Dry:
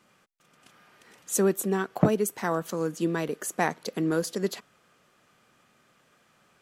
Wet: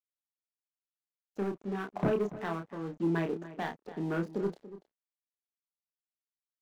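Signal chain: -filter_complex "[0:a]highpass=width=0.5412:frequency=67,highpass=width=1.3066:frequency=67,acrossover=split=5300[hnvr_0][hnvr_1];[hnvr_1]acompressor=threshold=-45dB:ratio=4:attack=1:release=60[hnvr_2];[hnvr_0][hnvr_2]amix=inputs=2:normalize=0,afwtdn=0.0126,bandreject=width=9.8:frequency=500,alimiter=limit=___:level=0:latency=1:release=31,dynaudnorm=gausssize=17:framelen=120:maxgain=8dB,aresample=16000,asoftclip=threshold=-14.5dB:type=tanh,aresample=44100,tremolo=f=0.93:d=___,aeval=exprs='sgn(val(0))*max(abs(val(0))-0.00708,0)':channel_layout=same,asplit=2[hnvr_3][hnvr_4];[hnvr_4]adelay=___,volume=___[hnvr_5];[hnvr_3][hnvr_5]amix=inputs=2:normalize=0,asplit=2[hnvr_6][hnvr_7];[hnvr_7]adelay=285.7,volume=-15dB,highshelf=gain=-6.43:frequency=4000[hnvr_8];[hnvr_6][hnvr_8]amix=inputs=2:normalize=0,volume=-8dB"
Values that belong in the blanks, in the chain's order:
-12dB, 0.51, 30, -5dB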